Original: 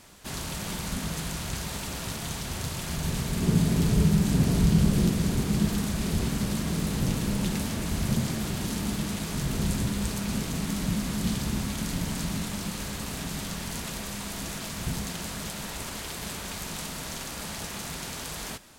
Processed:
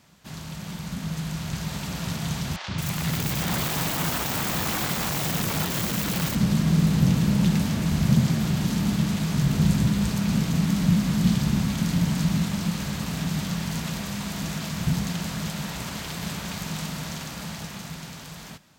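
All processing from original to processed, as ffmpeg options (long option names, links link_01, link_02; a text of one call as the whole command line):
ffmpeg -i in.wav -filter_complex "[0:a]asettb=1/sr,asplit=3[link_01][link_02][link_03];[link_01]atrim=end=2.564[link_04];[link_02]atrim=start=2.56:end=6.35,asetpts=PTS-STARTPTS,afade=type=in:duration=0.004:curve=qsin,afade=type=out:start_time=3.786:duration=0.004:curve=qsin,highshelf=frequency=5500:gain=6,aeval=exprs='(mod(15*val(0)+1,2)-1)/15':channel_layout=same,acrossover=split=540|5000[link_05][link_06][link_07];[link_05]adelay=120[link_08];[link_07]adelay=220[link_09];[link_08][link_06][link_09]amix=inputs=3:normalize=0,atrim=end_sample=167139[link_10];[link_03]atrim=start=6.346[link_11];[link_04][link_10]acrossfade=duration=0.004:curve1=hsin:curve2=qsin[link_12];[link_12][link_11]acrossfade=duration=0.004:curve1=qsin:curve2=hsin,highpass=54,dynaudnorm=framelen=180:gausssize=17:maxgain=8dB,equalizer=frequency=160:width_type=o:width=0.67:gain=9,equalizer=frequency=400:width_type=o:width=0.67:gain=-4,equalizer=frequency=10000:width_type=o:width=0.67:gain=-8,volume=-5dB" out.wav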